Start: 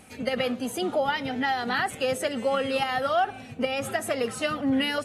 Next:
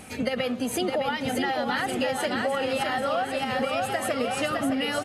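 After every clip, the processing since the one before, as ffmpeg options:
-filter_complex "[0:a]asplit=2[a][b];[b]aecho=0:1:610|1098|1488|1801|2051:0.631|0.398|0.251|0.158|0.1[c];[a][c]amix=inputs=2:normalize=0,acompressor=threshold=-31dB:ratio=6,volume=7dB"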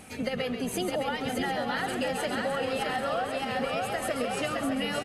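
-filter_complex "[0:a]asplit=5[a][b][c][d][e];[b]adelay=136,afreqshift=-64,volume=-8dB[f];[c]adelay=272,afreqshift=-128,volume=-16.9dB[g];[d]adelay=408,afreqshift=-192,volume=-25.7dB[h];[e]adelay=544,afreqshift=-256,volume=-34.6dB[i];[a][f][g][h][i]amix=inputs=5:normalize=0,volume=-4dB"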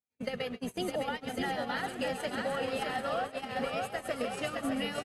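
-af "agate=range=-51dB:threshold=-30dB:ratio=16:detection=peak,volume=-3dB"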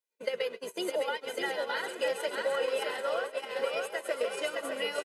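-af "highpass=f=260:w=0.5412,highpass=f=260:w=1.3066,aecho=1:1:2:0.78"

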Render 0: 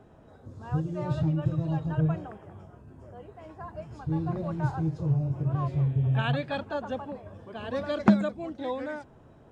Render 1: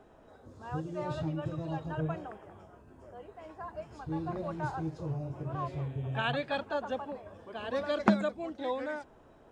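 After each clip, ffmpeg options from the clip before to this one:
-af "equalizer=f=120:w=0.76:g=-11.5"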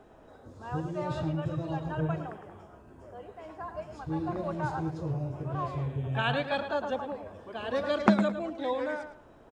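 -filter_complex "[0:a]asplit=2[a][b];[b]adelay=108,lowpass=f=3.9k:p=1,volume=-9dB,asplit=2[c][d];[d]adelay=108,lowpass=f=3.9k:p=1,volume=0.25,asplit=2[e][f];[f]adelay=108,lowpass=f=3.9k:p=1,volume=0.25[g];[a][c][e][g]amix=inputs=4:normalize=0,volume=2.5dB"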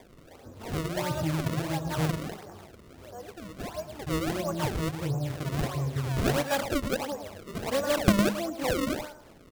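-af "acrusher=samples=31:mix=1:aa=0.000001:lfo=1:lforange=49.6:lforate=1.5,volume=2.5dB"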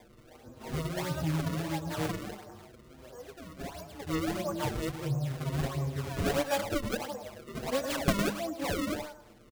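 -filter_complex "[0:a]asplit=2[a][b];[b]adelay=6.3,afreqshift=0.43[c];[a][c]amix=inputs=2:normalize=1"

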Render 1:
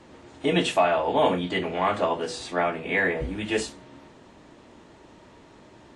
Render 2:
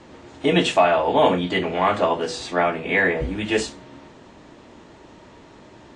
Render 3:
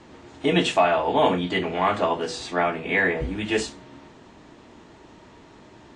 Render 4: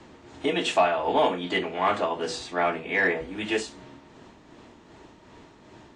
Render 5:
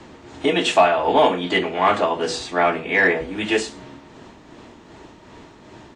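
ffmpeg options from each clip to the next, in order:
-af "lowpass=f=8.3k:w=0.5412,lowpass=f=8.3k:w=1.3066,volume=4.5dB"
-af "equalizer=f=550:w=6.7:g=-5,volume=-2dB"
-filter_complex "[0:a]acrossover=split=230|1500[a][b][c];[a]acompressor=threshold=-42dB:ratio=6[d];[d][b][c]amix=inputs=3:normalize=0,tremolo=f=2.6:d=0.44,asoftclip=type=tanh:threshold=-10dB"
-af "aecho=1:1:111:0.0668,volume=6.5dB"

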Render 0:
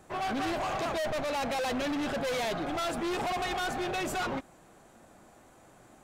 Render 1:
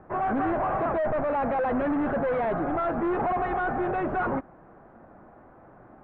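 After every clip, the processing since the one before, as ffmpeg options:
-af "lowpass=f=1.6k:w=0.5412,lowpass=f=1.6k:w=1.3066,volume=6dB"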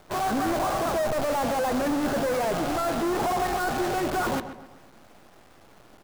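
-filter_complex "[0:a]acrusher=bits=6:dc=4:mix=0:aa=0.000001,asplit=2[a][b];[b]adelay=130,lowpass=f=2.6k:p=1,volume=-11dB,asplit=2[c][d];[d]adelay=130,lowpass=f=2.6k:p=1,volume=0.44,asplit=2[e][f];[f]adelay=130,lowpass=f=2.6k:p=1,volume=0.44,asplit=2[g][h];[h]adelay=130,lowpass=f=2.6k:p=1,volume=0.44,asplit=2[i][j];[j]adelay=130,lowpass=f=2.6k:p=1,volume=0.44[k];[a][c][e][g][i][k]amix=inputs=6:normalize=0"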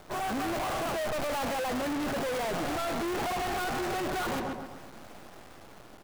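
-af "dynaudnorm=f=390:g=5:m=3dB,asoftclip=type=hard:threshold=-32.5dB,volume=2dB"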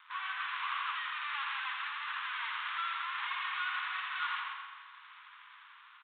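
-af "asuperpass=centerf=2400:order=20:qfactor=0.52,aecho=1:1:84|168|252|336|420|504|588|672:0.562|0.321|0.183|0.104|0.0594|0.0338|0.0193|0.011,aresample=8000,aresample=44100"

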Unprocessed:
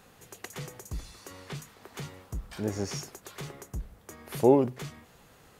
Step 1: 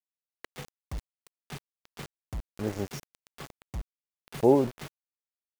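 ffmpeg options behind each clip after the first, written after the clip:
-af "aemphasis=mode=reproduction:type=75kf,aeval=exprs='val(0)*gte(abs(val(0)),0.0168)':c=same"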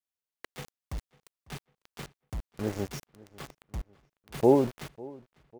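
-filter_complex "[0:a]asplit=2[a][b];[b]adelay=549,lowpass=f=3.3k:p=1,volume=-22dB,asplit=2[c][d];[d]adelay=549,lowpass=f=3.3k:p=1,volume=0.47,asplit=2[e][f];[f]adelay=549,lowpass=f=3.3k:p=1,volume=0.47[g];[a][c][e][g]amix=inputs=4:normalize=0"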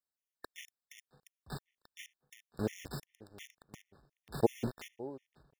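-af "afftfilt=real='re*gt(sin(2*PI*2.8*pts/sr)*(1-2*mod(floor(b*sr/1024/1800),2)),0)':imag='im*gt(sin(2*PI*2.8*pts/sr)*(1-2*mod(floor(b*sr/1024/1800),2)),0)':win_size=1024:overlap=0.75,volume=-1dB"

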